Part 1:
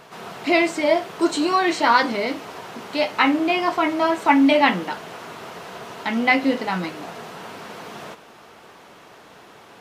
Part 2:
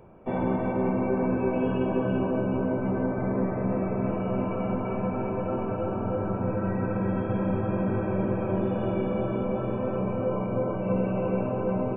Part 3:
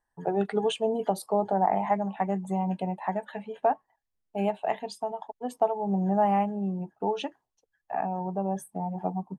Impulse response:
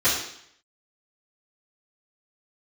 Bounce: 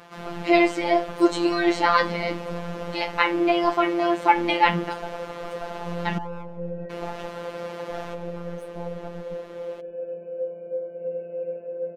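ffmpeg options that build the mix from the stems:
-filter_complex "[0:a]highshelf=f=5400:g=-8.5,volume=1.26,asplit=3[s0][s1][s2];[s0]atrim=end=6.18,asetpts=PTS-STARTPTS,afade=t=out:st=6.176:d=0.004:c=hsin[s3];[s1]atrim=start=6.18:end=6.9,asetpts=PTS-STARTPTS,volume=0[s4];[s2]atrim=start=6.9,asetpts=PTS-STARTPTS,afade=t=in:d=0.004:c=hsin[s5];[s3][s4][s5]concat=n=3:v=0:a=1[s6];[1:a]asplit=3[s7][s8][s9];[s7]bandpass=f=530:t=q:w=8,volume=1[s10];[s8]bandpass=f=1840:t=q:w=8,volume=0.501[s11];[s9]bandpass=f=2480:t=q:w=8,volume=0.355[s12];[s10][s11][s12]amix=inputs=3:normalize=0,adelay=150,volume=1.33[s13];[2:a]aeval=exprs='if(lt(val(0),0),0.251*val(0),val(0))':c=same,volume=1.12,asplit=2[s14][s15];[s15]volume=0.0631[s16];[s13][s14]amix=inputs=2:normalize=0,highshelf=f=4100:g=-6.5,alimiter=limit=0.1:level=0:latency=1:release=261,volume=1[s17];[s16]aecho=0:1:142|284|426|568|710|852|994|1136|1278:1|0.59|0.348|0.205|0.121|0.0715|0.0422|0.0249|0.0147[s18];[s6][s17][s18]amix=inputs=3:normalize=0,afftfilt=real='hypot(re,im)*cos(PI*b)':imag='0':win_size=1024:overlap=0.75"

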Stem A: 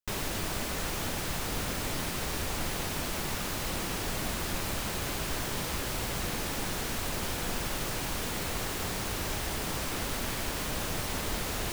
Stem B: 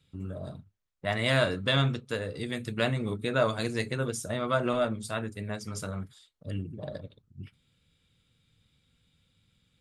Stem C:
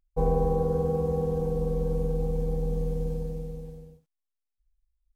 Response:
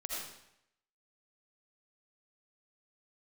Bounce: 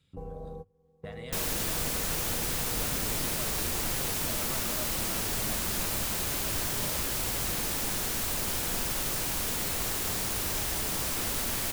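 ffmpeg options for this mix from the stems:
-filter_complex "[0:a]highshelf=f=5600:g=10,adelay=1250,volume=0.841[s0];[1:a]acompressor=threshold=0.0316:ratio=6,volume=0.794,asplit=2[s1][s2];[2:a]volume=0.501[s3];[s2]apad=whole_len=227367[s4];[s3][s4]sidechaingate=range=0.0224:threshold=0.00501:ratio=16:detection=peak[s5];[s1][s5]amix=inputs=2:normalize=0,acompressor=threshold=0.00708:ratio=2.5,volume=1[s6];[s0][s6]amix=inputs=2:normalize=0"

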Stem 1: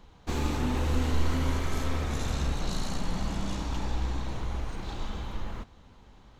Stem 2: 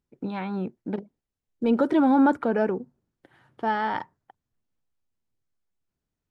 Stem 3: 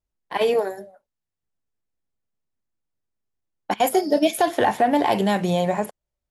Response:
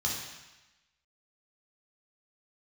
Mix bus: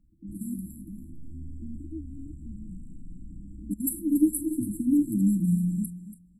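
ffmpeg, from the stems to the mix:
-filter_complex "[0:a]lowpass=5500,asoftclip=type=tanh:threshold=0.0501,volume=0.335,asplit=2[s0][s1];[s1]volume=0.398[s2];[1:a]acompressor=threshold=0.0631:ratio=6,aecho=1:1:5.7:0.61,volume=0.251[s3];[2:a]volume=1.12,asplit=3[s4][s5][s6];[s5]volume=0.211[s7];[s6]apad=whole_len=282153[s8];[s0][s8]sidechaincompress=threshold=0.0224:ratio=8:attack=16:release=424[s9];[s2][s7]amix=inputs=2:normalize=0,aecho=0:1:283|566|849:1|0.15|0.0225[s10];[s9][s3][s4][s10]amix=inputs=4:normalize=0,afftfilt=real='re*(1-between(b*sr/4096,340,7400))':imag='im*(1-between(b*sr/4096,340,7400))':win_size=4096:overlap=0.75"

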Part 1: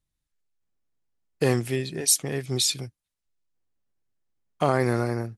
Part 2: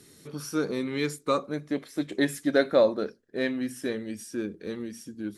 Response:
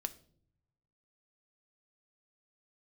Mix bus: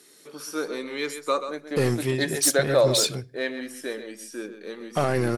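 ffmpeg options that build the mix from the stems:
-filter_complex "[0:a]asoftclip=type=tanh:threshold=0.133,adelay=350,volume=0.944,asplit=2[s0][s1];[s1]volume=0.501[s2];[1:a]highpass=410,volume=1.26,asplit=2[s3][s4];[s4]volume=0.316[s5];[2:a]atrim=start_sample=2205[s6];[s2][s6]afir=irnorm=-1:irlink=0[s7];[s5]aecho=0:1:132:1[s8];[s0][s3][s7][s8]amix=inputs=4:normalize=0"

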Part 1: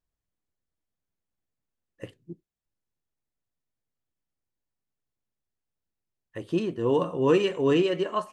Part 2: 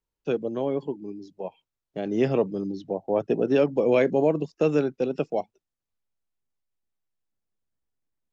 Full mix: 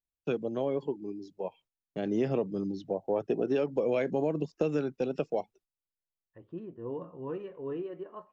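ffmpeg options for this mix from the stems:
-filter_complex "[0:a]lowpass=1300,volume=0.178[s0];[1:a]agate=range=0.0708:threshold=0.00158:ratio=16:detection=peak,volume=0.75[s1];[s0][s1]amix=inputs=2:normalize=0,aphaser=in_gain=1:out_gain=1:delay=2.9:decay=0.21:speed=0.44:type=triangular,acompressor=threshold=0.0562:ratio=4"

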